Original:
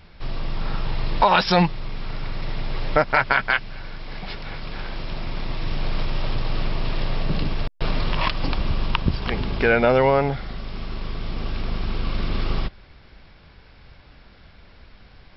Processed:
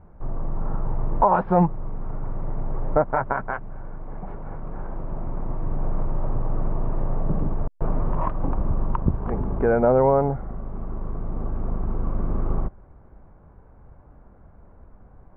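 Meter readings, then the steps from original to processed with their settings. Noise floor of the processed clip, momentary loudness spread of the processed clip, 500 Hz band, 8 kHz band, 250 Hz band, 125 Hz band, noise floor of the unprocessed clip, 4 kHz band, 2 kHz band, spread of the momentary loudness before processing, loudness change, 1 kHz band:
-50 dBFS, 16 LU, 0.0 dB, n/a, 0.0 dB, 0.0 dB, -50 dBFS, under -35 dB, -13.5 dB, 16 LU, -1.5 dB, -1.5 dB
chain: LPF 1100 Hz 24 dB/oct

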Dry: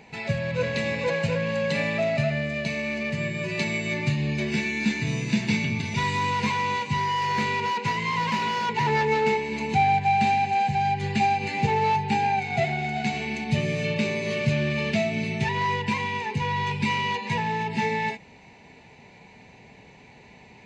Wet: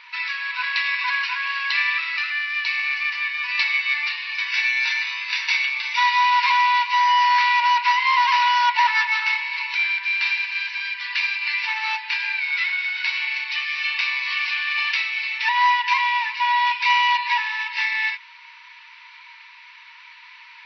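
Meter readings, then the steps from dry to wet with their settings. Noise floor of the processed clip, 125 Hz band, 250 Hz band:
-46 dBFS, under -40 dB, under -40 dB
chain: brick-wall FIR band-pass 900–5900 Hz; band noise 1200–3600 Hz -63 dBFS; gain +9 dB

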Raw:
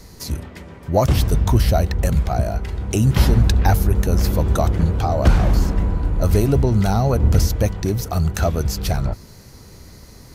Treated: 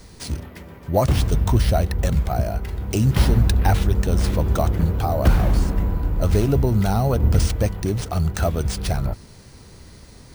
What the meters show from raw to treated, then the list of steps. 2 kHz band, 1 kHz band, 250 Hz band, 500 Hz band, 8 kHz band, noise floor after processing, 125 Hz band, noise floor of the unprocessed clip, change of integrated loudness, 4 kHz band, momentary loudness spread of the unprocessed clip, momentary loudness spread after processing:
-1.5 dB, -2.0 dB, -2.0 dB, -2.0 dB, -2.5 dB, -44 dBFS, -2.0 dB, -42 dBFS, -2.0 dB, -2.0 dB, 8 LU, 8 LU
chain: careless resampling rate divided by 3×, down none, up hold; gain -2 dB

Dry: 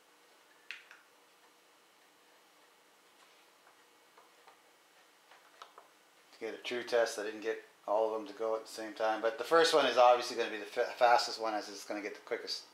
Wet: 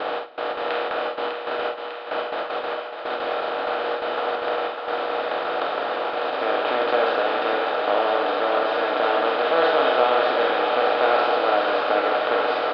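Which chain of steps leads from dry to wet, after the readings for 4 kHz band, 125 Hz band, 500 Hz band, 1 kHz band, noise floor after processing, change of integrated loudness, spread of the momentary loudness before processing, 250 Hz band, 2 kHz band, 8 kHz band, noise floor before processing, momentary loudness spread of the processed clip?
+11.0 dB, n/a, +12.5 dB, +13.5 dB, -33 dBFS, +10.0 dB, 17 LU, +12.0 dB, +14.5 dB, under -15 dB, -65 dBFS, 9 LU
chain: per-bin compression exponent 0.2; steep low-pass 3500 Hz 36 dB/oct; gate with hold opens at -17 dBFS; doubler 48 ms -6.5 dB; on a send: thinning echo 0.6 s, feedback 76%, high-pass 300 Hz, level -7 dB

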